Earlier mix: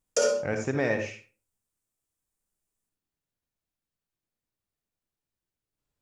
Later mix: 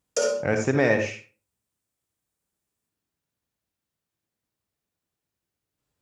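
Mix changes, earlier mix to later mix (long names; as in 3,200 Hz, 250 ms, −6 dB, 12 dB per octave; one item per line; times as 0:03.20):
speech +6.0 dB
master: add high-pass filter 59 Hz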